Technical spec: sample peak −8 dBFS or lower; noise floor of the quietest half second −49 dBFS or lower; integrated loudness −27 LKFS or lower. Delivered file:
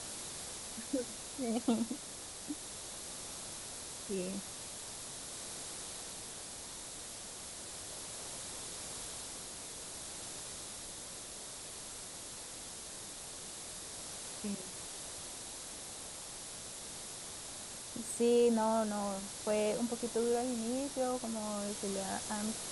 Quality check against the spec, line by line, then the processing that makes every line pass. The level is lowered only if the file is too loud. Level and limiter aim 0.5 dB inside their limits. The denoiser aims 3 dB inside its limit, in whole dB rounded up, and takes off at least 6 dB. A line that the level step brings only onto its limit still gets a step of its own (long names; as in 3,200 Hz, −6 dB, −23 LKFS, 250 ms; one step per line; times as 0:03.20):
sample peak −20.0 dBFS: in spec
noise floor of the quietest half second −47 dBFS: out of spec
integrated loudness −39.0 LKFS: in spec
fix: broadband denoise 6 dB, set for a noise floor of −47 dBFS